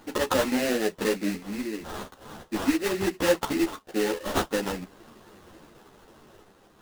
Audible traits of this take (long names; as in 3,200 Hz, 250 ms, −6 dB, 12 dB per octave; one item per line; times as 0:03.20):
sample-and-hold tremolo 1.4 Hz
aliases and images of a low sample rate 2,300 Hz, jitter 20%
a shimmering, thickened sound